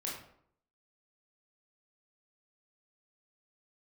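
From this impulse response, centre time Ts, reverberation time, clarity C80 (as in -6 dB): 43 ms, 0.65 s, 7.5 dB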